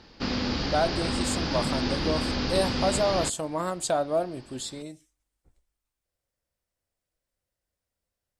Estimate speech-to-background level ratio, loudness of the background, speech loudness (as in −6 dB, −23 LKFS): −0.5 dB, −29.0 LKFS, −29.5 LKFS